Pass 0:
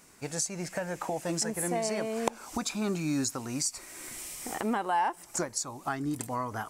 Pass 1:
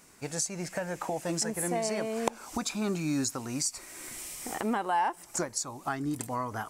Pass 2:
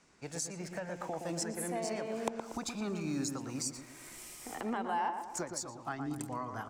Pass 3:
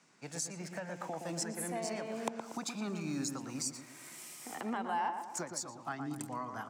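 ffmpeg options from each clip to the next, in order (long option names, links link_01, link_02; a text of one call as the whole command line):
ffmpeg -i in.wav -af anull out.wav
ffmpeg -i in.wav -filter_complex "[0:a]acrossover=split=320|450|7300[link_01][link_02][link_03][link_04];[link_04]aeval=exprs='sgn(val(0))*max(abs(val(0))-0.002,0)':channel_layout=same[link_05];[link_01][link_02][link_03][link_05]amix=inputs=4:normalize=0,asplit=2[link_06][link_07];[link_07]adelay=118,lowpass=frequency=1500:poles=1,volume=-5.5dB,asplit=2[link_08][link_09];[link_09]adelay=118,lowpass=frequency=1500:poles=1,volume=0.55,asplit=2[link_10][link_11];[link_11]adelay=118,lowpass=frequency=1500:poles=1,volume=0.55,asplit=2[link_12][link_13];[link_13]adelay=118,lowpass=frequency=1500:poles=1,volume=0.55,asplit=2[link_14][link_15];[link_15]adelay=118,lowpass=frequency=1500:poles=1,volume=0.55,asplit=2[link_16][link_17];[link_17]adelay=118,lowpass=frequency=1500:poles=1,volume=0.55,asplit=2[link_18][link_19];[link_19]adelay=118,lowpass=frequency=1500:poles=1,volume=0.55[link_20];[link_06][link_08][link_10][link_12][link_14][link_16][link_18][link_20]amix=inputs=8:normalize=0,volume=-6.5dB" out.wav
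ffmpeg -i in.wav -af "highpass=frequency=130:width=0.5412,highpass=frequency=130:width=1.3066,equalizer=frequency=420:width_type=o:width=1:gain=-4" out.wav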